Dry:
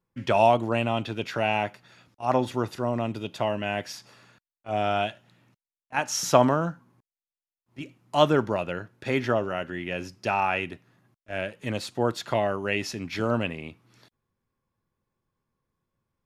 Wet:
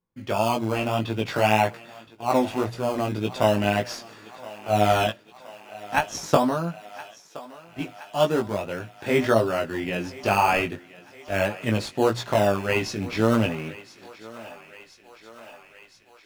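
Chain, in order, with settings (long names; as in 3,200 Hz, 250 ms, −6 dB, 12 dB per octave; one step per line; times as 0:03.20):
high-shelf EQ 11,000 Hz −5.5 dB
mains-hum notches 60/120 Hz
in parallel at −8 dB: sample-and-hold swept by an LFO 16×, swing 100% 0.41 Hz
on the sum: automatic gain control gain up to 14 dB
0:05.08–0:06.35: transient designer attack +8 dB, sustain −5 dB
chorus effect 1.8 Hz, delay 17.5 ms, depth 2.6 ms
on a send: feedback echo with a high-pass in the loop 1,020 ms, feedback 72%, high-pass 420 Hz, level −17.5 dB
on the sum: level −2.5 dB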